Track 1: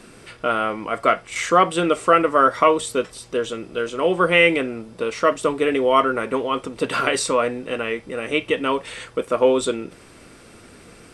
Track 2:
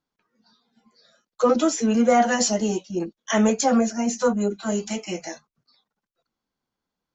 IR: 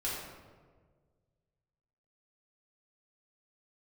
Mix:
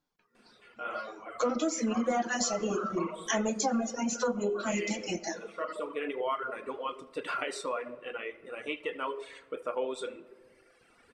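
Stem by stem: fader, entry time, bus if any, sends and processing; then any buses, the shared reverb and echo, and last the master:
−13.0 dB, 0.35 s, send −6.5 dB, echo send −11 dB, bass and treble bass −13 dB, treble −8 dB; automatic ducking −15 dB, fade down 0.70 s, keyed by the second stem
−2.5 dB, 0.00 s, send −6 dB, no echo send, no processing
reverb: on, RT60 1.6 s, pre-delay 3 ms
echo: single-tap delay 77 ms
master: reverb reduction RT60 1.5 s; downward compressor 3 to 1, threshold −29 dBFS, peak gain reduction 11.5 dB

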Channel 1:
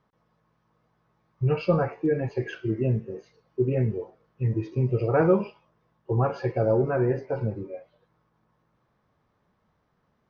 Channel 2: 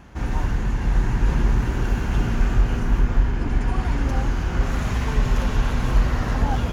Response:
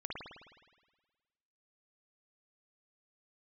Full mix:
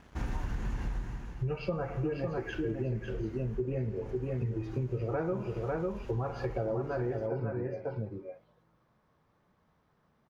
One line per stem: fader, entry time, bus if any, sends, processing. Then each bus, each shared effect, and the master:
−2.5 dB, 0.00 s, send −11.5 dB, echo send −4 dB, no processing
−5.5 dB, 0.00 s, no send, echo send −17.5 dB, dead-zone distortion −49 dBFS; automatic ducking −22 dB, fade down 0.60 s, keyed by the first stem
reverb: on, RT60 1.4 s, pre-delay 52 ms
echo: single-tap delay 550 ms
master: downward compressor 6 to 1, threshold −30 dBFS, peak gain reduction 13 dB

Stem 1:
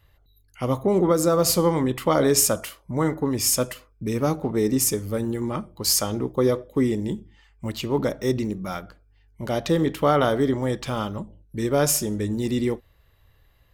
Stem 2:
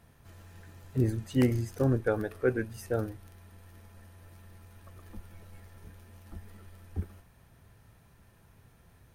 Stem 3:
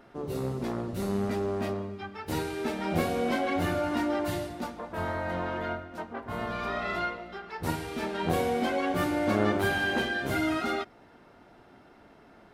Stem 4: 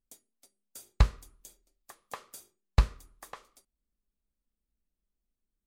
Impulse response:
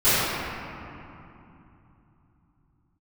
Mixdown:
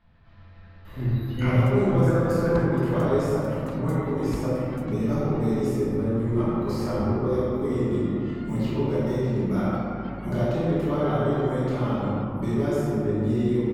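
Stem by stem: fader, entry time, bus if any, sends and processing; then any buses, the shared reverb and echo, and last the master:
−17.0 dB, 0.85 s, send −7.5 dB, high-shelf EQ 2,000 Hz −11.5 dB; multiband upward and downward compressor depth 100%
−6.0 dB, 0.00 s, send −13.5 dB, Butterworth low-pass 4,400 Hz; parametric band 390 Hz −12 dB 0.4 octaves
−17.0 dB, 1.40 s, no send, gate on every frequency bin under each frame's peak −30 dB strong
−6.0 dB, 1.55 s, no send, brickwall limiter −18 dBFS, peak gain reduction 7.5 dB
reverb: on, RT60 2.9 s, pre-delay 3 ms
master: no processing

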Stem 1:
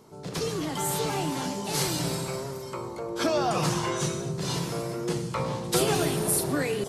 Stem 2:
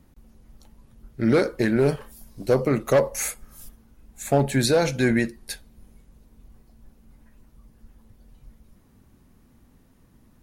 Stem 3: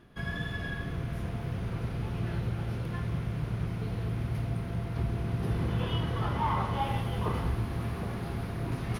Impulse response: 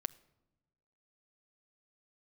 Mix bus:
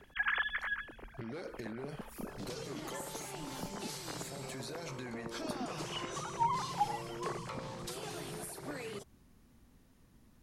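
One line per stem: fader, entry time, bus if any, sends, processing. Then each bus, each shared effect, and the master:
−10.5 dB, 2.15 s, bus A, no send, no processing
−7.0 dB, 0.00 s, bus A, no send, brickwall limiter −21.5 dBFS, peak gain reduction 11.5 dB; downward compressor, threshold −31 dBFS, peak gain reduction 6.5 dB
0.0 dB, 0.00 s, no bus, no send, three sine waves on the formant tracks; automatic ducking −11 dB, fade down 0.55 s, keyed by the second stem
bus A: 0.0 dB, high-shelf EQ 2,700 Hz +8.5 dB; downward compressor 6 to 1, threshold −39 dBFS, peak gain reduction 13 dB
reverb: not used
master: high-shelf EQ 8,000 Hz −9.5 dB

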